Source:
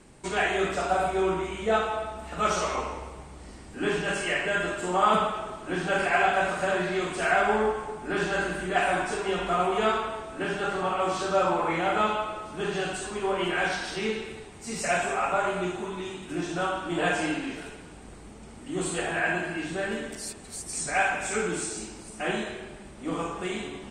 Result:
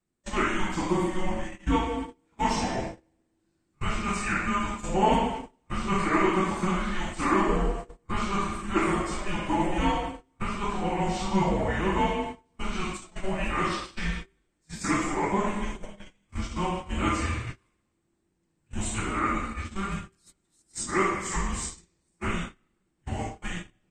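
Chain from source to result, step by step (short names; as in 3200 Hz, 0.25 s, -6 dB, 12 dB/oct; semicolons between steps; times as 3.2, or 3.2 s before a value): gate -32 dBFS, range -29 dB; frequency shift -390 Hz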